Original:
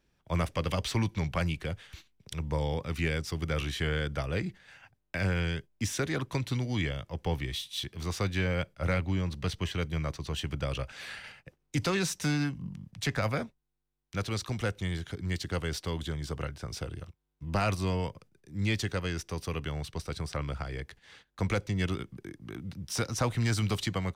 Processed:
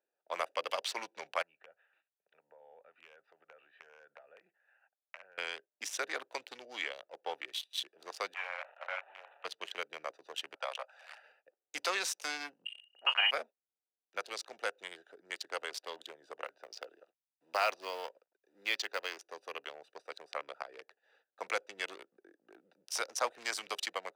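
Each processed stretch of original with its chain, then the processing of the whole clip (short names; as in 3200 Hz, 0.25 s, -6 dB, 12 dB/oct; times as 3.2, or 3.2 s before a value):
1.42–5.38 LPF 2500 Hz 24 dB/oct + bell 320 Hz -14 dB 2 oct + compressor 12:1, threshold -38 dBFS
8.34–9.45 delta modulation 16 kbps, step -33.5 dBFS + HPF 710 Hz 24 dB/oct + doubler 32 ms -10 dB
10.55–11.22 HPF 610 Hz 24 dB/oct + bell 860 Hz +6 dB 1.2 oct
12.65–13.31 HPF 56 Hz + inverted band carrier 3000 Hz + doubler 36 ms -9 dB
16.46–19.17 HPF 180 Hz + resonant high shelf 6800 Hz -7.5 dB, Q 1.5 + companded quantiser 6-bit
whole clip: Wiener smoothing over 41 samples; HPF 560 Hz 24 dB/oct; gain +1 dB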